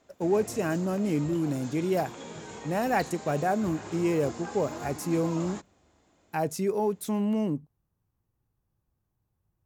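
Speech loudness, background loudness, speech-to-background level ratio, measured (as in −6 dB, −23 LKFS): −29.0 LKFS, −41.5 LKFS, 12.5 dB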